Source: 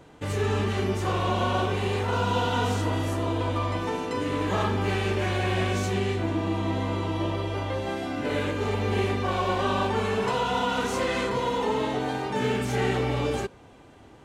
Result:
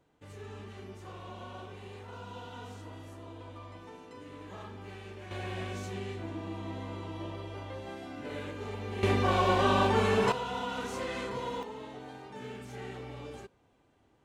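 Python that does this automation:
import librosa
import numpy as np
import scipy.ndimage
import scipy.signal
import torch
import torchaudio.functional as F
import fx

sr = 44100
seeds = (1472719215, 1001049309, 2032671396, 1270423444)

y = fx.gain(x, sr, db=fx.steps((0.0, -19.5), (5.31, -12.0), (9.03, 0.0), (10.32, -9.5), (11.63, -17.0)))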